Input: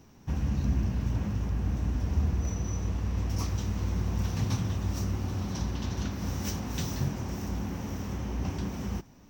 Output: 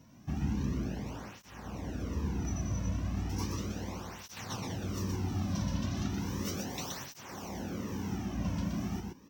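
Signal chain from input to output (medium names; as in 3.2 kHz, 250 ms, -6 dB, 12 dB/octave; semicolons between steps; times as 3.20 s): on a send: delay 123 ms -4 dB; on the sum: cancelling through-zero flanger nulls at 0.35 Hz, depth 2.6 ms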